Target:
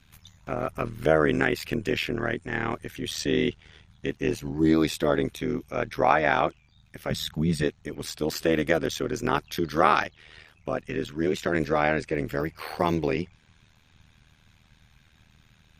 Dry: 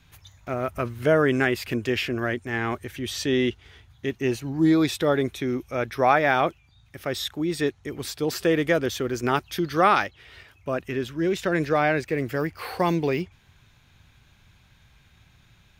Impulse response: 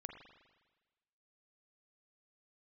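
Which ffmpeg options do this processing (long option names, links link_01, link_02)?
-filter_complex "[0:a]tremolo=f=78:d=0.919,asettb=1/sr,asplit=3[link_01][link_02][link_03];[link_01]atrim=end=7.104[link_04];[link_02]atrim=start=7.1:end=7.63,asetpts=PTS-STARTPTS,afade=type=in:duration=0.004:curve=qsin,afade=type=out:start_time=0.526:duration=0.004:curve=qsin,lowshelf=frequency=240:width_type=q:width=3:gain=7[link_05];[link_03]atrim=start=7.626[link_06];[link_04][link_05]acrossfade=duration=0.004:curve1=hsin:curve2=qsin[link_07];[link_07][link_06]acrossfade=duration=0.004:curve1=qsin:curve2=hsin,volume=2.5dB" -ar 48000 -c:a libmp3lame -b:a 56k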